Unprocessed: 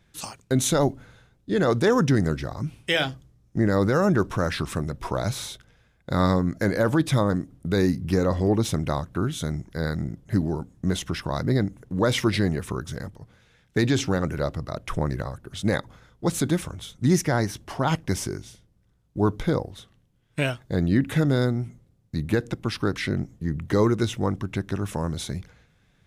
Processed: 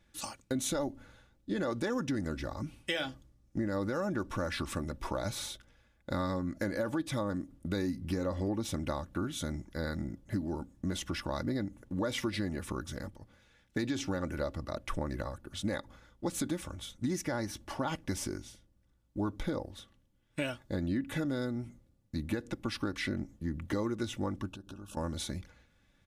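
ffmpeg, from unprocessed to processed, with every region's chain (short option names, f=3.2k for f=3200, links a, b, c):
-filter_complex "[0:a]asettb=1/sr,asplit=3[a][b][c];[a]atrim=end=24.494[d];[b]atrim=start=24.49:end=24.97,asetpts=PTS-STARTPTS,afade=t=in:d=0.004:c=qsin,afade=t=out:st=0.476:d=0.004:c=qsin,asuperstop=centerf=2000:order=8:qfactor=2.1,acompressor=threshold=-35dB:ratio=5:attack=3.2:release=140:knee=1:detection=peak,tremolo=f=61:d=0.462[e];[c]atrim=start=24.966[f];[d][e]acrossfade=d=0.004:c1=hsin:c2=qsin[g];[g][f]acrossfade=d=0.004:c1=qsin:c2=hsin,aecho=1:1:3.5:0.54,acompressor=threshold=-24dB:ratio=5,volume=-6dB"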